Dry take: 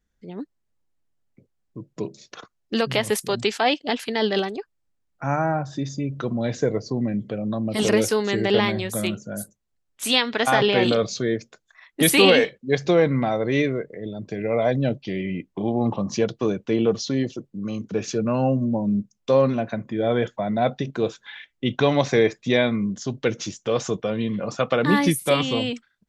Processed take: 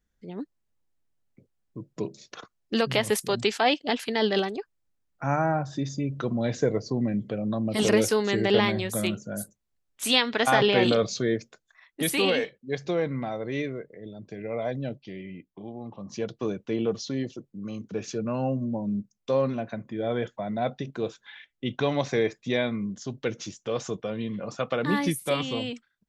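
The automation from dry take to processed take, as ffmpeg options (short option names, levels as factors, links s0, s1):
-af "volume=2.99,afade=t=out:st=11.36:d=0.66:silence=0.446684,afade=t=out:st=14.65:d=1.27:silence=0.354813,afade=t=in:st=15.92:d=0.48:silence=0.266073"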